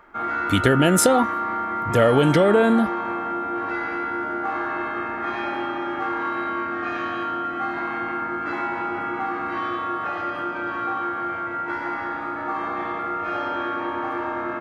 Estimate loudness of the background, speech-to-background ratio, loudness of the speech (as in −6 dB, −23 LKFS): −26.5 LKFS, 7.5 dB, −19.0 LKFS